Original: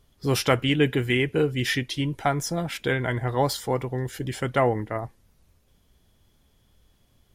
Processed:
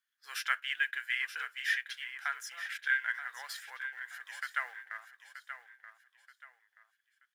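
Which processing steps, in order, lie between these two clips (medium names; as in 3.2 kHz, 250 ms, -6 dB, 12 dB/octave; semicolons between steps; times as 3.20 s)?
companding laws mixed up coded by A; ladder high-pass 1.5 kHz, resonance 75%; on a send: feedback delay 929 ms, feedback 32%, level -10.5 dB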